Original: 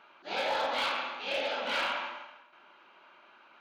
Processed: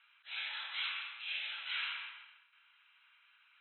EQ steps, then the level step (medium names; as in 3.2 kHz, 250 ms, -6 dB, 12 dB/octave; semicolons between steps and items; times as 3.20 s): Bessel high-pass 2.7 kHz, order 4; brick-wall FIR low-pass 4.1 kHz; distance through air 180 m; +2.5 dB